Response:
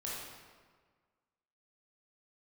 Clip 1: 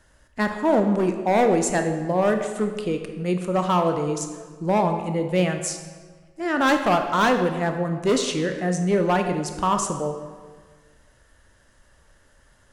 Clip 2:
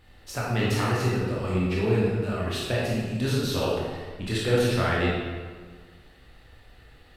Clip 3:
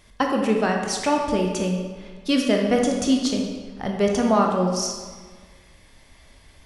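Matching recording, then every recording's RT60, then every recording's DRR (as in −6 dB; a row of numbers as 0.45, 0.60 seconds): 2; 1.6, 1.6, 1.6 seconds; 5.5, −6.5, 1.0 decibels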